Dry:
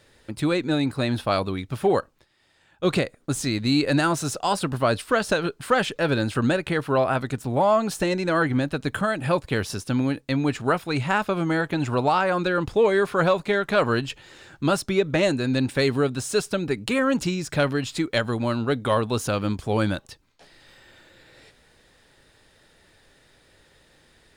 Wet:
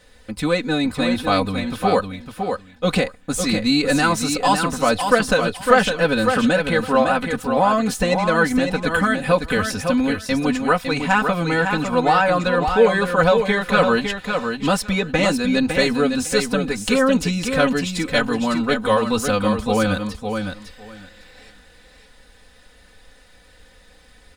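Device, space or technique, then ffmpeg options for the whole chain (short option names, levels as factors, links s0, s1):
low shelf boost with a cut just above: -af "lowshelf=f=100:g=7.5,equalizer=f=300:t=o:w=0.66:g=-5.5,aecho=1:1:4:0.96,aecho=1:1:556|1112|1668:0.501|0.0852|0.0145,volume=1.26"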